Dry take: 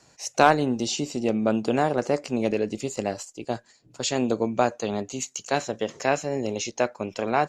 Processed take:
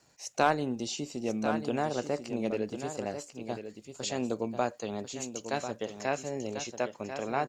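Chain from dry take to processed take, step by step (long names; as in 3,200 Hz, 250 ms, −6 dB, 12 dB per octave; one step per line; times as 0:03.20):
surface crackle 400 per second −53 dBFS
single-tap delay 1,043 ms −9 dB
level −8 dB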